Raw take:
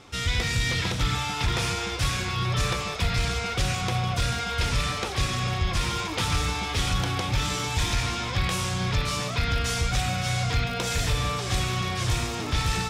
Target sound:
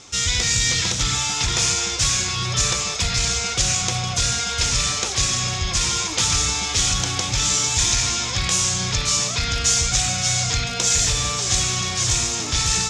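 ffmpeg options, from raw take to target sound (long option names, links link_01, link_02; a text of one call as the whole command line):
ffmpeg -i in.wav -af "lowpass=frequency=6800:width_type=q:width=3.5,highshelf=frequency=3800:gain=10" out.wav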